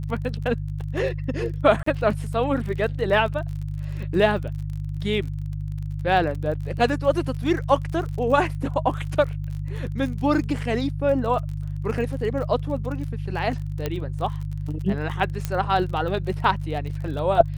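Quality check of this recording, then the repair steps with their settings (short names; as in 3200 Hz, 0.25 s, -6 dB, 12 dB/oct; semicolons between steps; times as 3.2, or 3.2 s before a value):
crackle 39/s -32 dBFS
hum 50 Hz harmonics 3 -29 dBFS
1.83–1.86 gap 34 ms
13.86 pop -12 dBFS
15.45 pop -12 dBFS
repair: de-click; de-hum 50 Hz, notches 3; interpolate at 1.83, 34 ms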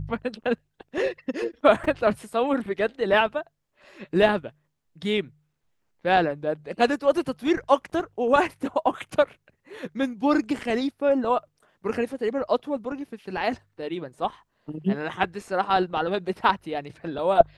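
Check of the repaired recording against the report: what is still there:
none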